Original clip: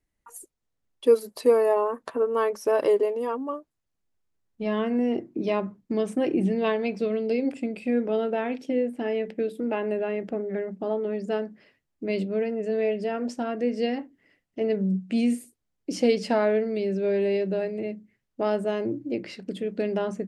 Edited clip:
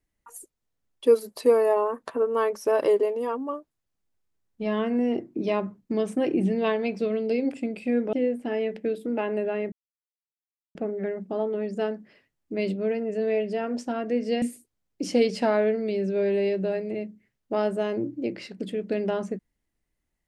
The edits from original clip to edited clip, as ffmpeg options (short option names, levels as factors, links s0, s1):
-filter_complex "[0:a]asplit=4[s0][s1][s2][s3];[s0]atrim=end=8.132[s4];[s1]atrim=start=8.668:end=10.26,asetpts=PTS-STARTPTS,afade=t=out:st=1.588:d=0.004:c=hsin,apad=pad_dur=1.03[s5];[s2]atrim=start=10.26:end=13.932,asetpts=PTS-STARTPTS,afade=t=in:d=0.004:c=hsin[s6];[s3]atrim=start=15.298[s7];[s5][s6]concat=n=2:v=0:a=1[s8];[s4][s8]acrossfade=d=0.004:c1=hsin:c2=hsin[s9];[s9][s7]acrossfade=d=0.004:c1=hsin:c2=hsin"